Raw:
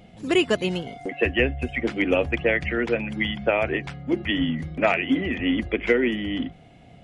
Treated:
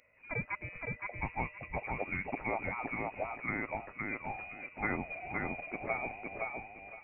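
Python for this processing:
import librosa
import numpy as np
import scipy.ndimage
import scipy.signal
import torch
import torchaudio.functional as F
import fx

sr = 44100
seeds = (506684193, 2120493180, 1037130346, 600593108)

p1 = fx.highpass(x, sr, hz=1300.0, slope=6)
p2 = p1 + fx.echo_feedback(p1, sr, ms=516, feedback_pct=21, wet_db=-3, dry=0)
p3 = fx.freq_invert(p2, sr, carrier_hz=2700)
y = p3 * librosa.db_to_amplitude(-9.0)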